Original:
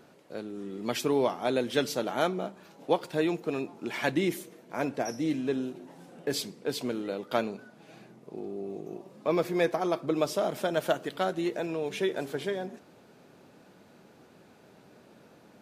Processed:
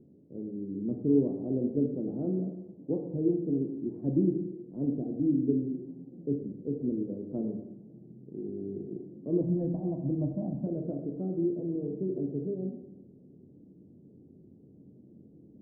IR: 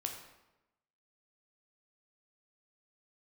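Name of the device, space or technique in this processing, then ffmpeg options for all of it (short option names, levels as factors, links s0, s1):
next room: -filter_complex "[0:a]lowpass=f=330:w=0.5412,lowpass=f=330:w=1.3066[s0];[1:a]atrim=start_sample=2205[s1];[s0][s1]afir=irnorm=-1:irlink=0,asettb=1/sr,asplit=3[s2][s3][s4];[s2]atrim=end=9.414[s5];[s3]atrim=start=9.41:end=10.67,asetpts=PTS-STARTPTS,afade=t=in:d=0.004:c=qsin,afade=t=out:st=1.256:d=0.004:c=qsin,aecho=1:1:1.2:0.97,atrim=end_sample=55566[s6];[s4]atrim=start=10.666[s7];[s5][s6]acrossfade=d=0.004:c1=hsin:c2=qsin[s8];[s8][s7]acrossfade=d=0.004:c1=qsin:c2=hsin,volume=1.88"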